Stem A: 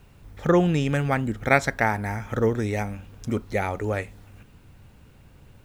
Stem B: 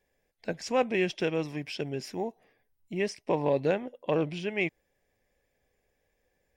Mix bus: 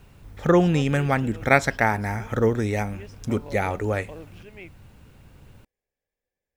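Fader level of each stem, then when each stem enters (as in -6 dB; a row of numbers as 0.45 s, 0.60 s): +1.5 dB, -14.0 dB; 0.00 s, 0.00 s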